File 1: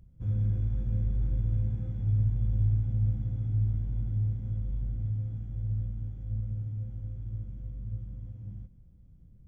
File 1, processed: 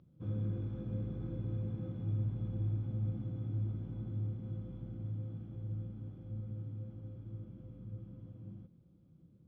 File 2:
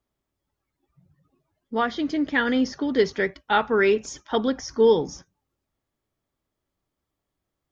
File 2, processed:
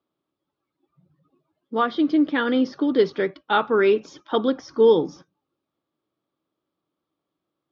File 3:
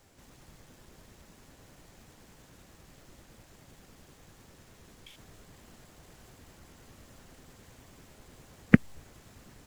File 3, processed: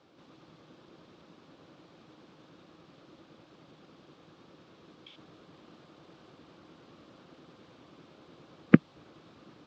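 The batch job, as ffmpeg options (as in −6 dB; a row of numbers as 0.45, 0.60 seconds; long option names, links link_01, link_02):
-af "highpass=160,equalizer=frequency=160:width_type=q:width=4:gain=5,equalizer=frequency=320:width_type=q:width=4:gain=9,equalizer=frequency=520:width_type=q:width=4:gain=4,equalizer=frequency=1200:width_type=q:width=4:gain=6,equalizer=frequency=1900:width_type=q:width=4:gain=-6,equalizer=frequency=3600:width_type=q:width=4:gain=3,lowpass=frequency=4600:width=0.5412,lowpass=frequency=4600:width=1.3066,volume=-1dB"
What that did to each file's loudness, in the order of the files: −8.5, +2.0, +0.5 LU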